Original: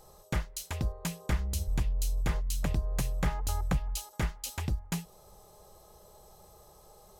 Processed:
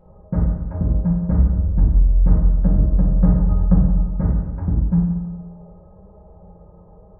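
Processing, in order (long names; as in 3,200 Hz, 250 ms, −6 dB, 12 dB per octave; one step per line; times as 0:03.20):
Gaussian smoothing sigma 7.9 samples
low-shelf EQ 370 Hz +7.5 dB
convolution reverb RT60 1.2 s, pre-delay 3 ms, DRR −5.5 dB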